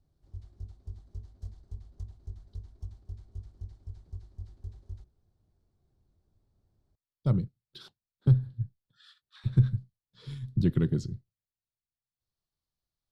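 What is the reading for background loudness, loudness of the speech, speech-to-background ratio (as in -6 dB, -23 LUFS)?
-46.5 LUFS, -29.0 LUFS, 17.5 dB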